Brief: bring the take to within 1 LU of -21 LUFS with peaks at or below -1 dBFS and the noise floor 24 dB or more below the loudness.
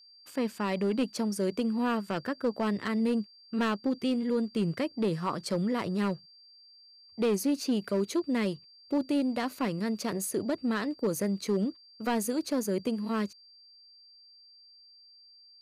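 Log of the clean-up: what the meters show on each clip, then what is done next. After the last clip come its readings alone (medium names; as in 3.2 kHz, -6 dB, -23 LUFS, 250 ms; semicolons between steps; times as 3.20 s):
clipped samples 1.1%; clipping level -21.5 dBFS; steady tone 4.7 kHz; tone level -54 dBFS; loudness -31.0 LUFS; peak level -21.5 dBFS; loudness target -21.0 LUFS
-> clip repair -21.5 dBFS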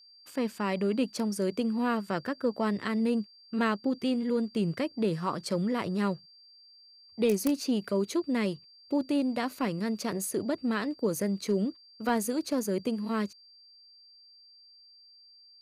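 clipped samples 0.0%; steady tone 4.7 kHz; tone level -54 dBFS
-> band-stop 4.7 kHz, Q 30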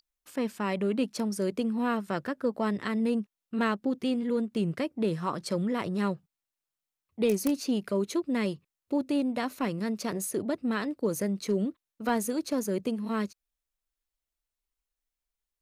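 steady tone not found; loudness -30.5 LUFS; peak level -12.5 dBFS; loudness target -21.0 LUFS
-> trim +9.5 dB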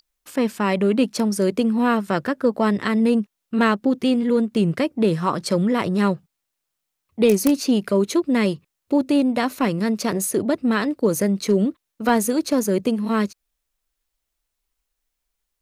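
loudness -21.0 LUFS; peak level -3.0 dBFS; noise floor -80 dBFS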